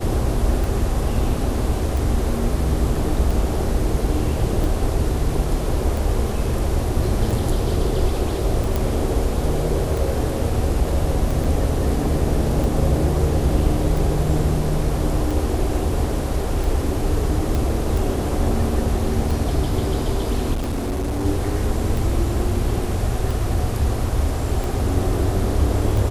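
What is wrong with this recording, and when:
tick 45 rpm
8.76 pop
11.44–11.45 gap 5.5 ms
17.55 pop
20.53–21.26 clipped -20 dBFS

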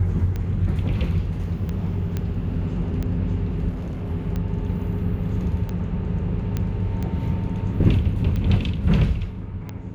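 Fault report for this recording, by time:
tick 45 rpm -17 dBFS
2.17 pop -14 dBFS
3.69–4.11 clipped -25.5 dBFS
6.57 pop -13 dBFS

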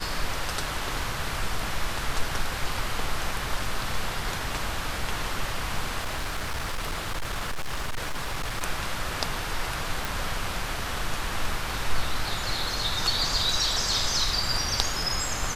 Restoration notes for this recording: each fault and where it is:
5.98–8.63 clipped -25.5 dBFS
10.05 pop

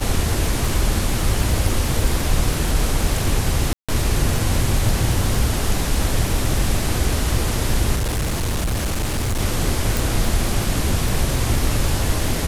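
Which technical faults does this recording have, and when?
crackle 71/s -22 dBFS
3.73–3.89 gap 0.156 s
7.95–9.4 clipped -18 dBFS
9.97 pop

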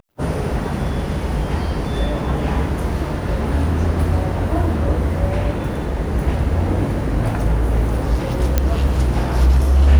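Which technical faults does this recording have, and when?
8.58 pop -2 dBFS

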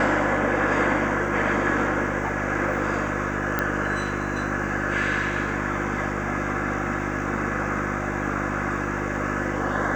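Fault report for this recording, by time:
hum 50 Hz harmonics 7 -30 dBFS
3.59 pop -9 dBFS

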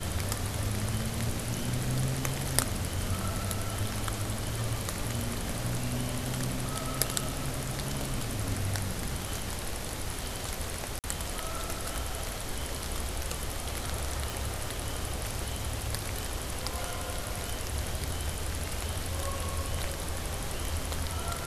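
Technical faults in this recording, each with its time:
10.99–11.04 gap 48 ms
14.3 pop

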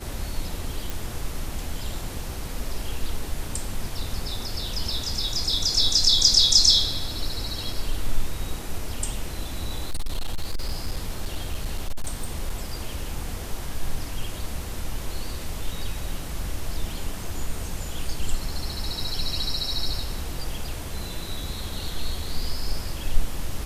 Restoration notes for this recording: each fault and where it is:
0.9 pop
9.55–12.55 clipped -21 dBFS

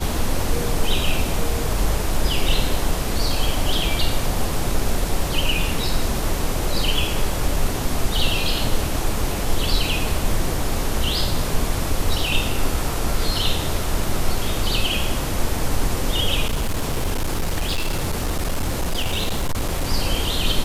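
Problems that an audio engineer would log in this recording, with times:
16.46–19.84 clipped -17.5 dBFS

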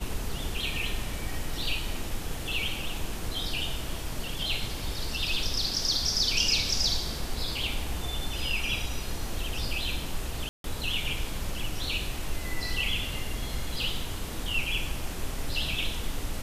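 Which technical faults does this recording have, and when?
10.49–10.64 gap 0.152 s

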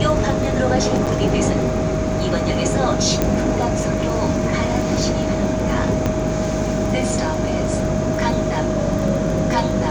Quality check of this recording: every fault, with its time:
crackle 14/s -24 dBFS
hum 50 Hz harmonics 7 -25 dBFS
tone 630 Hz -24 dBFS
1.06–1.07 gap 7.4 ms
3.22 pop -4 dBFS
6.06 pop -8 dBFS

